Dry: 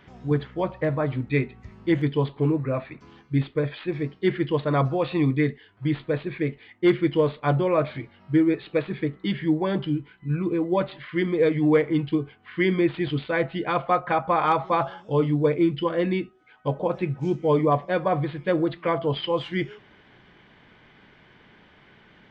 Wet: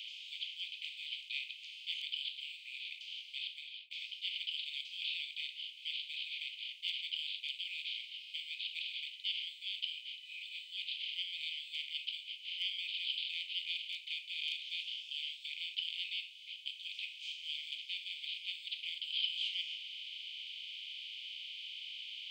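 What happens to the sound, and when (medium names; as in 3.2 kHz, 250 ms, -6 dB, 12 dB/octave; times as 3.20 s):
3.37–3.91 s: studio fade out
whole clip: spectral levelling over time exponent 0.4; steep high-pass 2.5 kHz 96 dB/octave; trim -4.5 dB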